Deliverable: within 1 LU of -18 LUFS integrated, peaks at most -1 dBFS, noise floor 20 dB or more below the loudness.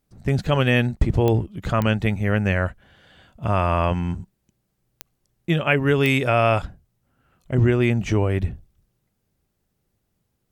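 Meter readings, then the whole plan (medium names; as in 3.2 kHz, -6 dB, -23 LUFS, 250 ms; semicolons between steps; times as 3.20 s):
clicks found 4; loudness -21.5 LUFS; peak level -5.0 dBFS; loudness target -18.0 LUFS
-> de-click; trim +3.5 dB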